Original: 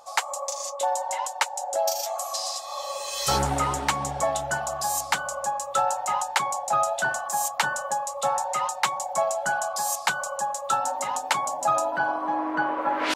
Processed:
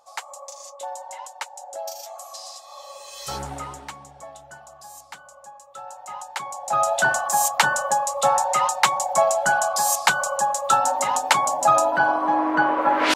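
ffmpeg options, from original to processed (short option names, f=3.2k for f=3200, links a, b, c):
-af "volume=14dB,afade=t=out:st=3.54:d=0.52:silence=0.398107,afade=t=in:st=5.79:d=0.79:silence=0.281838,afade=t=in:st=6.58:d=0.41:silence=0.281838"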